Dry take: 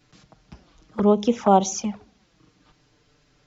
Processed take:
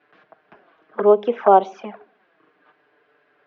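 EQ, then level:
loudspeaker in its box 380–2,800 Hz, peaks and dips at 410 Hz +8 dB, 670 Hz +8 dB, 1,100 Hz +4 dB, 1,600 Hz +10 dB
0.0 dB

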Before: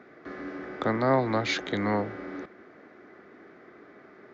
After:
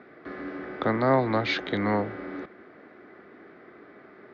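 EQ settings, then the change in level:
low-pass filter 4,600 Hz 24 dB per octave
+1.5 dB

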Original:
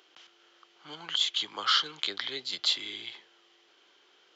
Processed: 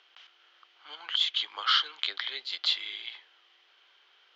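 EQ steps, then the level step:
band-pass filter 540–3,600 Hz
high-frequency loss of the air 88 metres
spectral tilt +3 dB per octave
0.0 dB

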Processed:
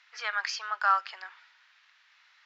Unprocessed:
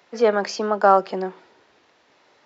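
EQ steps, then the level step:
high-pass filter 1,400 Hz 24 dB per octave
high-frequency loss of the air 110 metres
+2.0 dB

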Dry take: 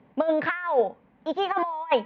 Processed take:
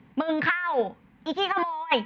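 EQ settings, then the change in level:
parametric band 580 Hz −11.5 dB 2 octaves
notch filter 600 Hz, Q 12
+7.5 dB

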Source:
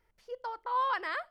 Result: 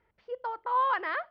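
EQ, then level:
high-pass filter 63 Hz 12 dB per octave
Bessel low-pass filter 2,500 Hz, order 4
+4.0 dB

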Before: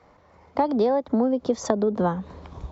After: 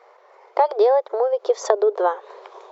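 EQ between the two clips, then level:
linear-phase brick-wall high-pass 360 Hz
high-shelf EQ 3,900 Hz −6 dB
+6.0 dB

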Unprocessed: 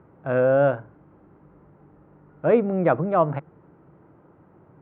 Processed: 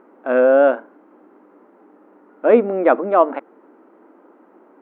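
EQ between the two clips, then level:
linear-phase brick-wall high-pass 210 Hz
+6.0 dB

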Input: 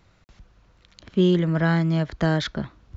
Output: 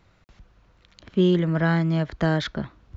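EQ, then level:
bass and treble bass −1 dB, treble −4 dB
0.0 dB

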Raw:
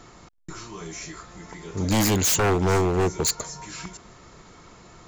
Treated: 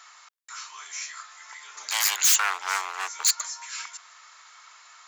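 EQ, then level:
high-pass filter 1,100 Hz 24 dB per octave
+3.0 dB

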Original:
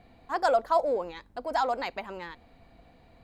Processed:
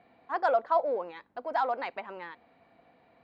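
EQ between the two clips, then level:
band-pass filter 140–2,500 Hz
low-shelf EQ 320 Hz −9 dB
0.0 dB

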